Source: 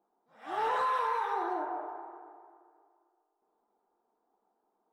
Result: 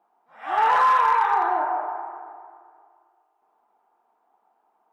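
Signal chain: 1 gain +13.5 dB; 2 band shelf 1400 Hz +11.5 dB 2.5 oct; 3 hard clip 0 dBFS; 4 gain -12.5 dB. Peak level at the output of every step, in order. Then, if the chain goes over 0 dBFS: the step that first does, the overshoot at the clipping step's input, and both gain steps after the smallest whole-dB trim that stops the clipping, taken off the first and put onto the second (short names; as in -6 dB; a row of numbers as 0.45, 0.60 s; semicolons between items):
-9.0, +3.0, 0.0, -12.5 dBFS; step 2, 3.0 dB; step 1 +10.5 dB, step 4 -9.5 dB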